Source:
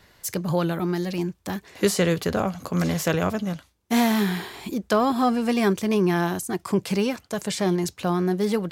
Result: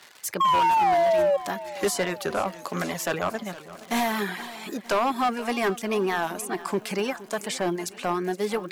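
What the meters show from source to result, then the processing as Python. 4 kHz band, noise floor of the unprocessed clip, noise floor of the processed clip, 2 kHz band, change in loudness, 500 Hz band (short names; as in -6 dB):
-1.0 dB, -61 dBFS, -46 dBFS, +0.5 dB, -1.5 dB, -0.5 dB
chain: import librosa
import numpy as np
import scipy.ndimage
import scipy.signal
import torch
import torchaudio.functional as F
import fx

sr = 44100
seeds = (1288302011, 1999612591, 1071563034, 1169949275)

y = fx.notch(x, sr, hz=500.0, q=12.0)
y = fx.dmg_crackle(y, sr, seeds[0], per_s=260.0, level_db=-36.0)
y = fx.dereverb_blind(y, sr, rt60_s=0.65)
y = fx.dynamic_eq(y, sr, hz=4400.0, q=0.79, threshold_db=-46.0, ratio=4.0, max_db=-7)
y = fx.spec_paint(y, sr, seeds[1], shape='fall', start_s=0.4, length_s=0.97, low_hz=550.0, high_hz=1100.0, level_db=-21.0)
y = fx.weighting(y, sr, curve='A')
y = np.clip(10.0 ** (21.5 / 20.0) * y, -1.0, 1.0) / 10.0 ** (21.5 / 20.0)
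y = fx.echo_feedback(y, sr, ms=469, feedback_pct=59, wet_db=-17)
y = fx.record_warp(y, sr, rpm=45.0, depth_cents=100.0)
y = y * 10.0 ** (3.5 / 20.0)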